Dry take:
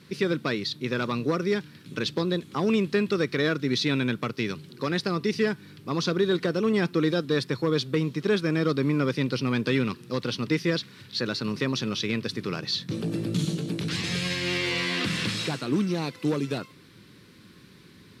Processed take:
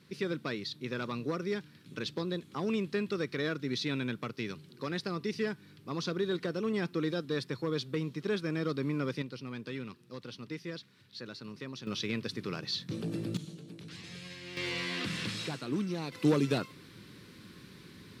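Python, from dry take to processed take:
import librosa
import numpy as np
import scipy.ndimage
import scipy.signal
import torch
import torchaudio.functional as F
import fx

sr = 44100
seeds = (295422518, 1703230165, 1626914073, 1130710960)

y = fx.gain(x, sr, db=fx.steps((0.0, -8.5), (9.22, -15.5), (11.87, -6.5), (13.37, -17.5), (14.57, -8.0), (16.12, 0.0)))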